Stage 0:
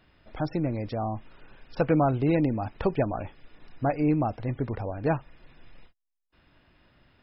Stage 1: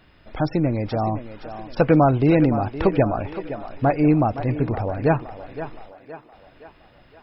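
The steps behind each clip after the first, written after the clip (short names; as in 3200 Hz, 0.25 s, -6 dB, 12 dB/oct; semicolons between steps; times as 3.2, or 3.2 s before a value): thinning echo 0.517 s, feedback 52%, high-pass 250 Hz, level -11 dB; gain +7 dB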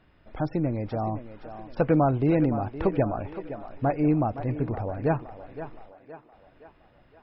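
high shelf 3200 Hz -11.5 dB; gain -5.5 dB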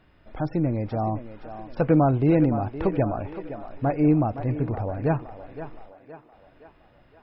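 harmonic-percussive split percussive -4 dB; gain +3.5 dB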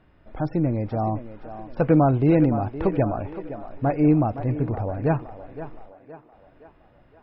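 mismatched tape noise reduction decoder only; gain +1.5 dB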